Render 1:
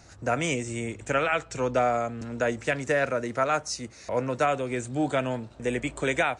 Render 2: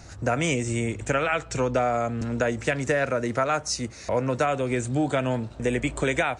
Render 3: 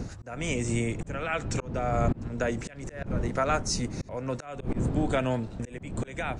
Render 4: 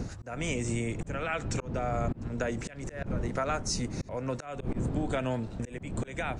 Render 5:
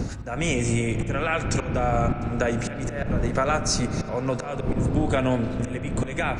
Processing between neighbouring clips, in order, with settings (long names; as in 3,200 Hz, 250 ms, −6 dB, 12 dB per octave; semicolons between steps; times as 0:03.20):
low-shelf EQ 140 Hz +6 dB; downward compressor 3 to 1, threshold −26 dBFS, peak gain reduction 6 dB; level +5 dB
wind on the microphone 190 Hz −22 dBFS; volume swells 417 ms; level −2 dB
downward compressor 2.5 to 1, threshold −28 dBFS, peak gain reduction 6 dB
convolution reverb RT60 4.2 s, pre-delay 35 ms, DRR 8 dB; level +7.5 dB